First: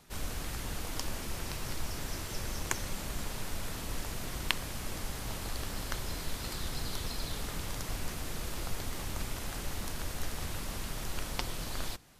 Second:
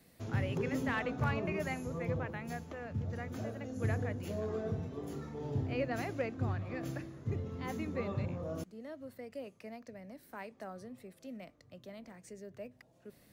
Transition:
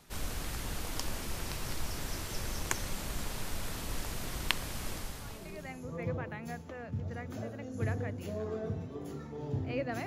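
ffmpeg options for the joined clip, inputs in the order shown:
-filter_complex "[0:a]apad=whole_dur=10.06,atrim=end=10.06,atrim=end=6.03,asetpts=PTS-STARTPTS[a];[1:a]atrim=start=0.91:end=6.08,asetpts=PTS-STARTPTS[b];[a][b]acrossfade=d=1.14:c1=qua:c2=qua"

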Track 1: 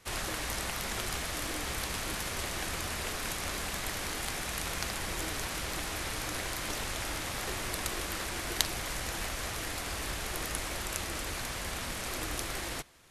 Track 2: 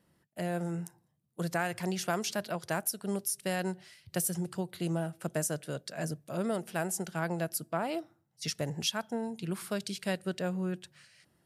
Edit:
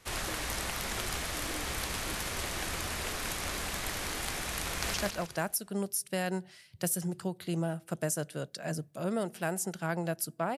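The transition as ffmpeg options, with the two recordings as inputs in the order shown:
-filter_complex "[0:a]apad=whole_dur=10.57,atrim=end=10.57,atrim=end=4.942[a];[1:a]atrim=start=2.268:end=7.9[b];[a][b]acrossfade=d=0.004:c1=hsin:c2=hsin,asplit=2[c][d];[d]afade=t=in:st=4.67:d=0.01,afade=t=out:st=4.94:d=0.01,aecho=0:1:160|320|480|640|800:0.841395|0.294488|0.103071|0.0360748|0.0126262[e];[c][e]amix=inputs=2:normalize=0"

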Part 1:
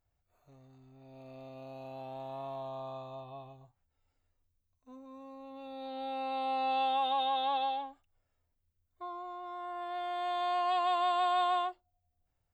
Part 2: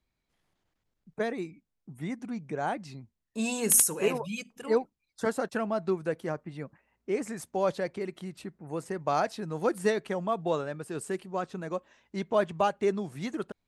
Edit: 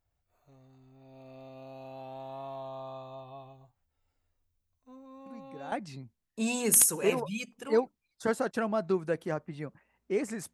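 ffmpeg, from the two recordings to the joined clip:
-filter_complex "[1:a]asplit=2[a][b];[0:a]apad=whole_dur=10.53,atrim=end=10.53,atrim=end=5.722[c];[b]atrim=start=2.698:end=7.51[d];[a]atrim=start=2.24:end=2.7,asetpts=PTS-STARTPTS,volume=-13dB,afade=t=in:d=0.004:c=hsin,afade=t=out:st=0.456:d=0.004:c=hsin,adelay=5260[e];[c][d]acrossfade=d=0.004:c1=hsin:c2=hsin[f];[f][e]amix=inputs=2:normalize=0"

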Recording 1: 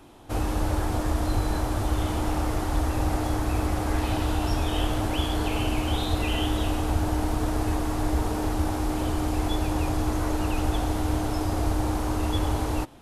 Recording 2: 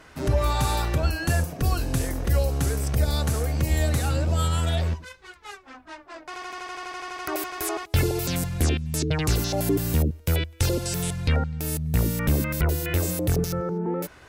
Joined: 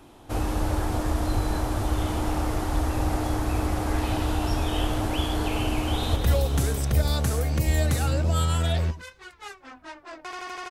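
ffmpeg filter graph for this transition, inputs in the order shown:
-filter_complex "[0:a]apad=whole_dur=10.7,atrim=end=10.7,atrim=end=6.162[a];[1:a]atrim=start=2.188:end=6.73[b];[a][b]acrossfade=d=0.004:c1=hsin:c2=hsin,asplit=2[c][d];[d]afade=t=in:st=5.81:d=0.01,afade=t=out:st=6.16:d=0.01,aecho=0:1:210|420|630|840|1050|1260|1470|1680|1890|2100|2310:0.473151|0.331206|0.231844|0.162291|0.113604|0.0795225|0.0556658|0.038966|0.0272762|0.0190934|0.0133654[e];[c][e]amix=inputs=2:normalize=0"

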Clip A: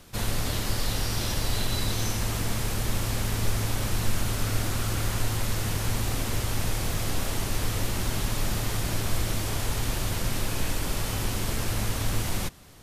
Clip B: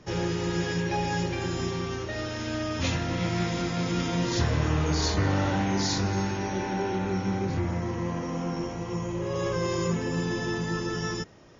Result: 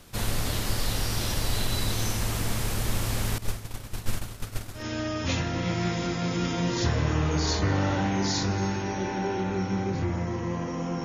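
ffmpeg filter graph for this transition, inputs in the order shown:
-filter_complex "[0:a]asettb=1/sr,asplit=3[a][b][c];[a]atrim=end=3.384[d];[b]atrim=start=3.38:end=4.85,asetpts=PTS-STARTPTS,afade=t=in:d=0.004:c=qsin,afade=t=out:st=1.466:d=0.004:c=qsin,agate=range=-33dB:threshold=-18dB:ratio=3:release=100:detection=peak[e];[c]atrim=start=4.846[f];[d][e]acrossfade=d=0.004:c1=hsin:c2=qsin[g];[g][f]acrossfade=d=0.004:c1=qsin:c2=hsin,apad=whole_dur=11.04,atrim=end=11.04,atrim=end=4.85,asetpts=PTS-STARTPTS[h];[1:a]atrim=start=2.28:end=8.59,asetpts=PTS-STARTPTS[i];[h][i]acrossfade=d=0.12:c1=tri:c2=tri"

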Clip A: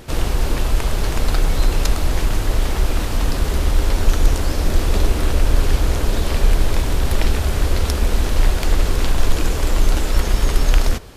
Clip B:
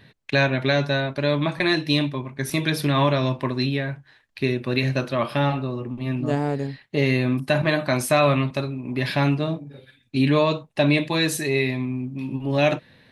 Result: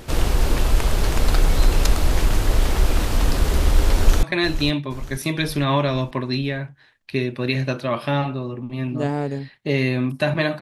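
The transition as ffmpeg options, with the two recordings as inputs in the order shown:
-filter_complex "[0:a]apad=whole_dur=10.61,atrim=end=10.61,atrim=end=4.232[a];[1:a]atrim=start=1.508:end=7.89[b];[a][b]acrossfade=d=0.004:c1=hsin:c2=hsin,asplit=2[c][d];[d]afade=t=in:st=3.96:d=0.01,afade=t=out:st=4.23:d=0.01,aecho=0:1:470|940|1410|1880|2350:0.251189|0.125594|0.0627972|0.0313986|0.0156993[e];[c][e]amix=inputs=2:normalize=0"

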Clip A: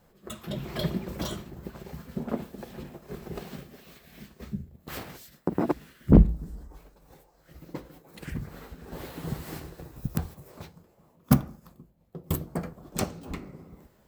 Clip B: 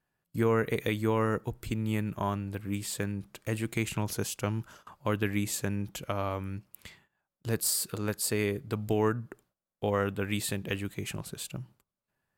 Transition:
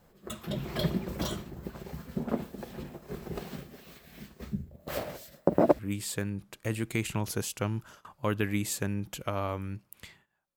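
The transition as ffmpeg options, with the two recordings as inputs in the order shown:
-filter_complex "[0:a]asettb=1/sr,asplit=3[a][b][c];[a]atrim=end=4.714[d];[b]atrim=start=4.71:end=5.79,asetpts=PTS-STARTPTS,afade=t=in:d=0.004:c=qsin,afade=t=out:st=1.076:d=0.004:c=qsin,equalizer=f=590:t=o:w=0.43:g=15[e];[c]atrim=start=5.786[f];[d][e]acrossfade=d=0.004:c1=hsin:c2=qsin[g];[g][f]acrossfade=d=0.004:c1=qsin:c2=hsin,apad=whole_dur=10.56,atrim=end=10.56,atrim=end=5.792[h];[1:a]atrim=start=2.608:end=7.38[i];[h][i]acrossfade=d=0.004:c1=hsin:c2=hsin"

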